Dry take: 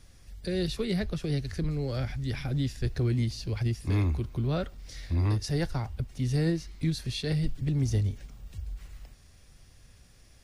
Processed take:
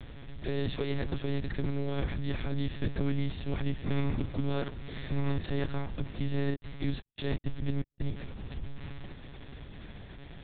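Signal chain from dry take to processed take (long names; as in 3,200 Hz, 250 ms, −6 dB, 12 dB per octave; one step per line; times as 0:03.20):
compressor on every frequency bin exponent 0.6
0:06.50–0:08.06: gate pattern ".xxxx..xx" 165 BPM −60 dB
one-pitch LPC vocoder at 8 kHz 140 Hz
level −4.5 dB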